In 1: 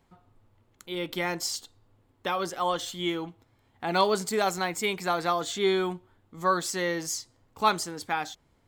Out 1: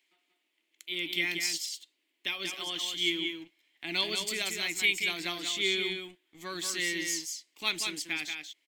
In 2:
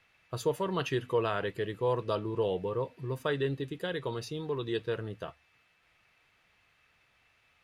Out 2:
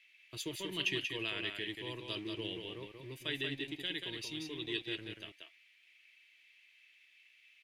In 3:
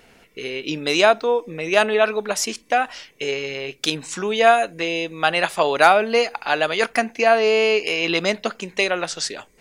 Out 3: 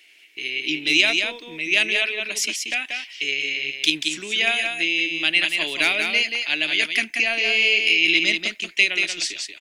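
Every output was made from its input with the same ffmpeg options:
-filter_complex "[0:a]aeval=exprs='0.891*(cos(1*acos(clip(val(0)/0.891,-1,1)))-cos(1*PI/2))+0.0178*(cos(4*acos(clip(val(0)/0.891,-1,1)))-cos(4*PI/2))':c=same,equalizer=f=315:t=o:w=0.33:g=12,equalizer=f=500:t=o:w=0.33:g=-11,equalizer=f=800:t=o:w=0.33:g=-9,equalizer=f=3.15k:t=o:w=0.33:g=4,aecho=1:1:184:0.562,acrossover=split=370[a][b];[a]aeval=exprs='sgn(val(0))*max(abs(val(0))-0.00562,0)':c=same[c];[c][b]amix=inputs=2:normalize=0,highshelf=f=1.7k:t=q:w=3:g=9.5,volume=-11dB"

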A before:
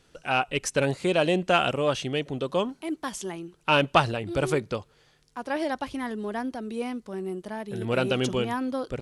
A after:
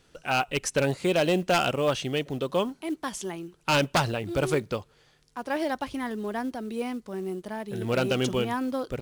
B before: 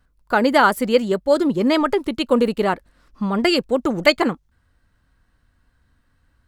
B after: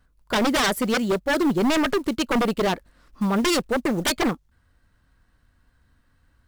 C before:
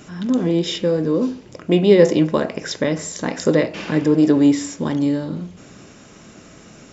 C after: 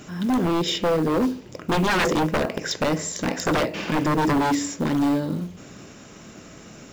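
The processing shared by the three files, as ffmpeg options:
-af "aeval=exprs='0.168*(abs(mod(val(0)/0.168+3,4)-2)-1)':c=same,acrusher=bits=7:mode=log:mix=0:aa=0.000001"

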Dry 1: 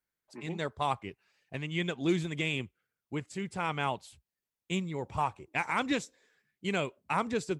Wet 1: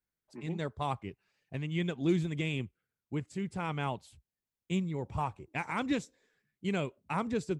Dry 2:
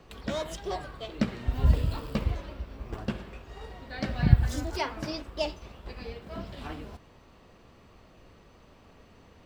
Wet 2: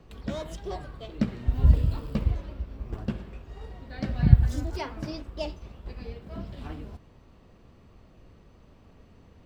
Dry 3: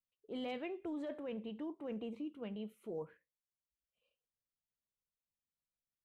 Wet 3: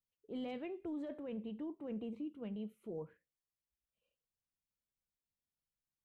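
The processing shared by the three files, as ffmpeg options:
-af "lowshelf=f=360:g=9.5,volume=-5.5dB"

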